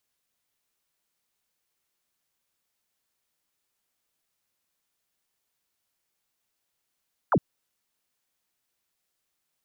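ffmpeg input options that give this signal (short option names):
-f lavfi -i "aevalsrc='0.133*clip(t/0.002,0,1)*clip((0.06-t)/0.002,0,1)*sin(2*PI*1600*0.06/log(110/1600)*(exp(log(110/1600)*t/0.06)-1))':d=0.06:s=44100"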